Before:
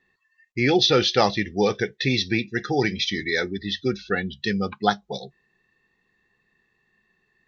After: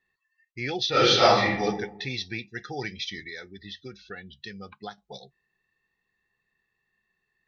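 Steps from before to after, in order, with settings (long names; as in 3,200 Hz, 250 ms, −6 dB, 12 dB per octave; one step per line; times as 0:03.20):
parametric band 270 Hz −6.5 dB 1.7 octaves
0:00.90–0:01.61: thrown reverb, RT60 0.81 s, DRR −11 dB
0:03.19–0:04.98: downward compressor 3 to 1, threshold −30 dBFS, peak gain reduction 11.5 dB
level −8 dB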